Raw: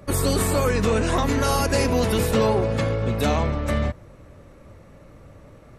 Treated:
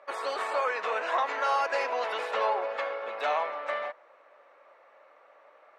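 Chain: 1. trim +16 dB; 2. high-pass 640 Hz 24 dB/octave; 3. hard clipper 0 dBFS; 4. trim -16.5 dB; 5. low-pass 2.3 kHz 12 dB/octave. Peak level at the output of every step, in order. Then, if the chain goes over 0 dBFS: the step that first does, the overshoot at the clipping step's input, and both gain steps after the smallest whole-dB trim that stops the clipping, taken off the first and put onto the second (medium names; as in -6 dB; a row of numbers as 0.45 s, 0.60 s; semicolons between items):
+4.5 dBFS, +4.0 dBFS, 0.0 dBFS, -16.5 dBFS, -16.5 dBFS; step 1, 4.0 dB; step 1 +12 dB, step 4 -12.5 dB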